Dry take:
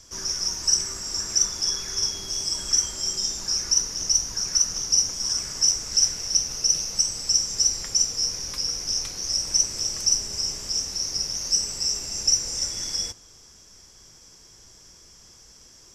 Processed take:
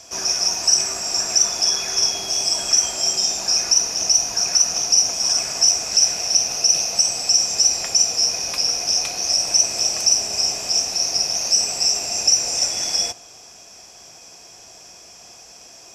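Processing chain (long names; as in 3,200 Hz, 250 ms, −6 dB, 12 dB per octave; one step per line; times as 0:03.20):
high-pass filter 240 Hz 6 dB per octave
in parallel at +1.5 dB: brickwall limiter −15 dBFS, peak gain reduction 8 dB
on the sum: hollow resonant body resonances 700/2,500 Hz, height 15 dB, ringing for 25 ms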